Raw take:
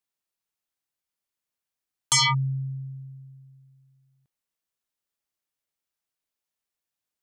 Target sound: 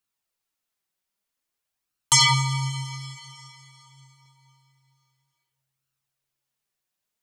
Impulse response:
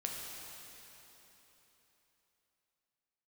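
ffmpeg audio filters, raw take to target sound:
-filter_complex "[0:a]flanger=delay=0.7:depth=4.7:regen=41:speed=0.51:shape=sinusoidal,asplit=2[link_01][link_02];[1:a]atrim=start_sample=2205,adelay=84[link_03];[link_02][link_03]afir=irnorm=-1:irlink=0,volume=-10dB[link_04];[link_01][link_04]amix=inputs=2:normalize=0,volume=7.5dB"

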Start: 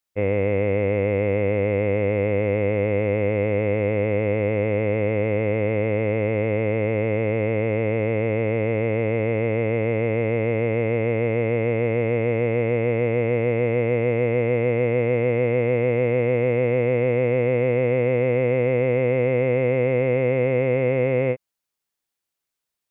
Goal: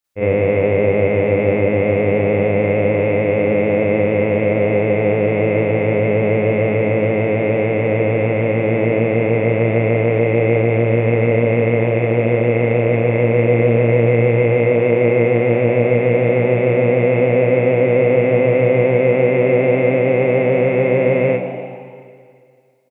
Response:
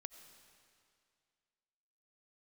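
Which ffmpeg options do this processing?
-filter_complex "[0:a]asplit=8[link_01][link_02][link_03][link_04][link_05][link_06][link_07][link_08];[link_02]adelay=95,afreqshift=57,volume=-14dB[link_09];[link_03]adelay=190,afreqshift=114,volume=-18.2dB[link_10];[link_04]adelay=285,afreqshift=171,volume=-22.3dB[link_11];[link_05]adelay=380,afreqshift=228,volume=-26.5dB[link_12];[link_06]adelay=475,afreqshift=285,volume=-30.6dB[link_13];[link_07]adelay=570,afreqshift=342,volume=-34.8dB[link_14];[link_08]adelay=665,afreqshift=399,volume=-38.9dB[link_15];[link_01][link_09][link_10][link_11][link_12][link_13][link_14][link_15]amix=inputs=8:normalize=0,asplit=2[link_16][link_17];[1:a]atrim=start_sample=2205,adelay=43[link_18];[link_17][link_18]afir=irnorm=-1:irlink=0,volume=12dB[link_19];[link_16][link_19]amix=inputs=2:normalize=0,volume=-1.5dB"

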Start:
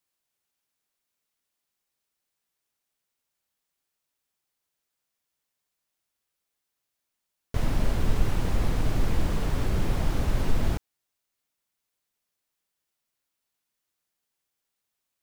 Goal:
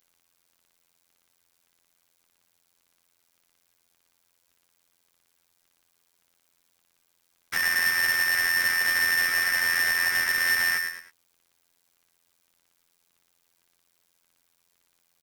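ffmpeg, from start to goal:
ffmpeg -i in.wav -filter_complex "[0:a]afftfilt=real='hypot(re,im)*cos(PI*b)':imag='0':win_size=2048:overlap=0.75,asplit=2[link_01][link_02];[link_02]adelay=106,lowpass=frequency=4200:poles=1,volume=-13.5dB,asplit=2[link_03][link_04];[link_04]adelay=106,lowpass=frequency=4200:poles=1,volume=0.31,asplit=2[link_05][link_06];[link_06]adelay=106,lowpass=frequency=4200:poles=1,volume=0.31[link_07];[link_01][link_03][link_05][link_07]amix=inputs=4:normalize=0,acrossover=split=96|440|920[link_08][link_09][link_10][link_11];[link_08]acompressor=threshold=-25dB:ratio=4[link_12];[link_09]acompressor=threshold=-37dB:ratio=4[link_13];[link_10]acompressor=threshold=-55dB:ratio=4[link_14];[link_11]acompressor=threshold=-52dB:ratio=4[link_15];[link_12][link_13][link_14][link_15]amix=inputs=4:normalize=0,lowshelf=frequency=110:width_type=q:width=1.5:gain=-7,asoftclip=type=hard:threshold=-30dB,aeval=exprs='0.0316*(cos(1*acos(clip(val(0)/0.0316,-1,1)))-cos(1*PI/2))+0.000224*(cos(3*acos(clip(val(0)/0.0316,-1,1)))-cos(3*PI/2))+0.0112*(cos(5*acos(clip(val(0)/0.0316,-1,1)))-cos(5*PI/2))+0.00224*(cos(6*acos(clip(val(0)/0.0316,-1,1)))-cos(6*PI/2))':channel_layout=same,aeval=exprs='val(0)*sgn(sin(2*PI*1800*n/s))':channel_layout=same,volume=7dB" out.wav

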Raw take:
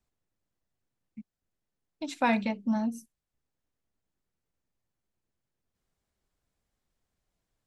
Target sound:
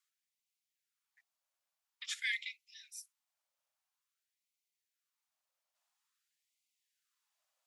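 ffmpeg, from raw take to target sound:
ffmpeg -i in.wav -af "afreqshift=-370,equalizer=frequency=1600:width=1.5:gain=-2.5,afftfilt=real='re*gte(b*sr/1024,490*pow(2000/490,0.5+0.5*sin(2*PI*0.49*pts/sr)))':imag='im*gte(b*sr/1024,490*pow(2000/490,0.5+0.5*sin(2*PI*0.49*pts/sr)))':win_size=1024:overlap=0.75,volume=3dB" out.wav

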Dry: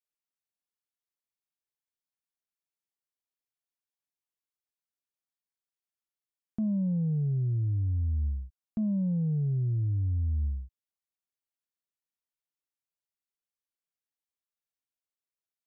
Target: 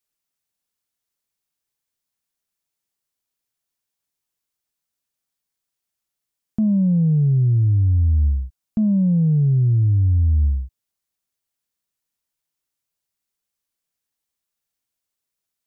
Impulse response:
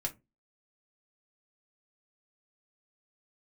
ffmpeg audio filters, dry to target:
-af "bass=frequency=250:gain=4,treble=frequency=4000:gain=4,volume=8dB"

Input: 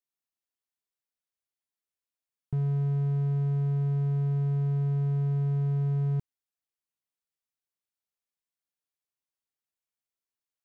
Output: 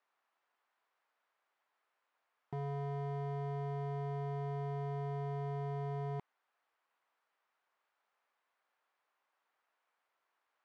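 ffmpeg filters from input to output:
ffmpeg -i in.wav -filter_complex "[0:a]bandpass=frequency=1100:width_type=q:width=0.95:csg=0,asplit=2[link_01][link_02];[link_02]highpass=frequency=720:poles=1,volume=23dB,asoftclip=type=tanh:threshold=-39dB[link_03];[link_01][link_03]amix=inputs=2:normalize=0,lowpass=frequency=1200:poles=1,volume=-6dB,volume=8dB" out.wav

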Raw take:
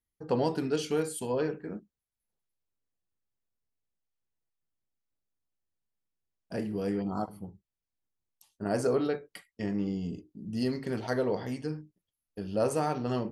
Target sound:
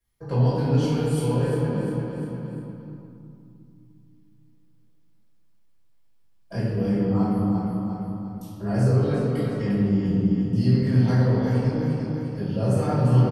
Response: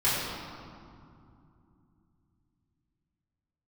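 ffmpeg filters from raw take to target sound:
-filter_complex "[0:a]aecho=1:1:350|700|1050|1400:0.355|0.114|0.0363|0.0116,acrossover=split=170[link_01][link_02];[link_02]acompressor=threshold=-50dB:ratio=2[link_03];[link_01][link_03]amix=inputs=2:normalize=0[link_04];[1:a]atrim=start_sample=2205[link_05];[link_04][link_05]afir=irnorm=-1:irlink=0,volume=1.5dB"

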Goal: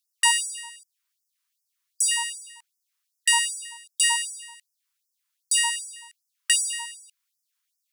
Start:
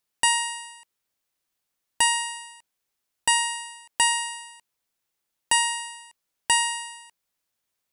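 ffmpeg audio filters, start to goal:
ffmpeg -i in.wav -af "acrusher=bits=6:mode=log:mix=0:aa=0.000001,afftfilt=real='re*gte(b*sr/1024,860*pow(5000/860,0.5+0.5*sin(2*PI*2.6*pts/sr)))':imag='im*gte(b*sr/1024,860*pow(5000/860,0.5+0.5*sin(2*PI*2.6*pts/sr)))':win_size=1024:overlap=0.75,volume=2dB" out.wav

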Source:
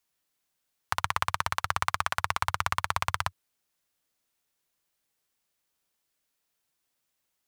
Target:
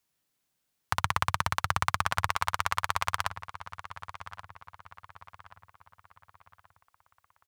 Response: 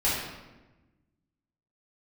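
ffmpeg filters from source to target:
-filter_complex "[0:a]asetnsamples=nb_out_samples=441:pad=0,asendcmd='2.28 equalizer g -8',equalizer=frequency=140:width_type=o:width=2.2:gain=6.5,asplit=2[link_01][link_02];[link_02]adelay=1130,lowpass=frequency=3100:poles=1,volume=-13.5dB,asplit=2[link_03][link_04];[link_04]adelay=1130,lowpass=frequency=3100:poles=1,volume=0.44,asplit=2[link_05][link_06];[link_06]adelay=1130,lowpass=frequency=3100:poles=1,volume=0.44,asplit=2[link_07][link_08];[link_08]adelay=1130,lowpass=frequency=3100:poles=1,volume=0.44[link_09];[link_01][link_03][link_05][link_07][link_09]amix=inputs=5:normalize=0"

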